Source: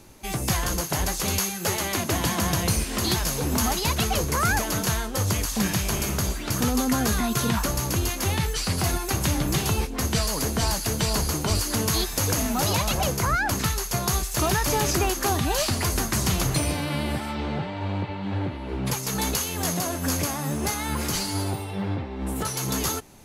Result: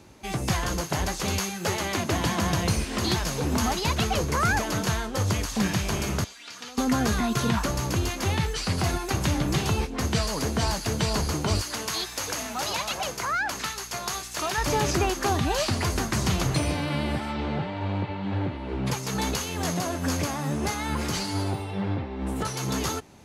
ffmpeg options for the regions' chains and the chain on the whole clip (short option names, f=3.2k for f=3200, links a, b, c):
-filter_complex "[0:a]asettb=1/sr,asplit=3[a][b][c];[a]atrim=end=6.244[d];[b]atrim=start=6.24:end=6.78,asetpts=PTS-STARTPTS,afade=t=in:d=0.004:c=qsin,afade=t=out:st=0.536:d=0.004:c=qsin,acrossover=split=4800[e][f];[f]acompressor=threshold=-46dB:ratio=4:attack=1:release=60[g];[e][g]amix=inputs=2:normalize=0,bandpass=f=7.3k:t=q:w=0.62,aecho=1:1:4.2:0.41,atrim=end_sample=23814[h];[c]atrim=start=6.776[i];[d][h]acrossfade=d=0.004:c1=hsin:c2=qsin[j];[j][i]acrossfade=d=0.004:c1=qsin:c2=hsin,asettb=1/sr,asplit=3[k][l][m];[k]atrim=end=11.614[n];[l]atrim=start=11.61:end=14.58,asetpts=PTS-STARTPTS,afade=t=in:d=0.004:c=qsin,afade=t=out:st=2.966:d=0.004:c=qsin,highpass=f=930:p=1,aeval=exprs='val(0)+0.00447*(sin(2*PI*60*n/s)+sin(2*PI*2*60*n/s)/2+sin(2*PI*3*60*n/s)/3+sin(2*PI*4*60*n/s)/4+sin(2*PI*5*60*n/s)/5)':c=same[o];[m]atrim=start=14.576[p];[n][o]acrossfade=d=0.004:c1=hsin:c2=qsin[q];[q][p]acrossfade=d=0.004:c1=qsin:c2=hsin,highpass=50,equalizer=f=14k:w=0.54:g=-13"